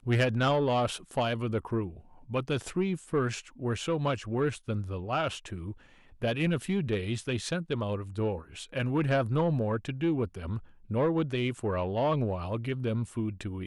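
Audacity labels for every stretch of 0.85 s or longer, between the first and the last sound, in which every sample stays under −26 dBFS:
5.280000	6.230000	silence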